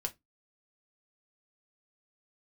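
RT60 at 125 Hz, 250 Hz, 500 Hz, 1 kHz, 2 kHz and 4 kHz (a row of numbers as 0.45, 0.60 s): 0.25, 0.25, 0.20, 0.15, 0.15, 0.15 s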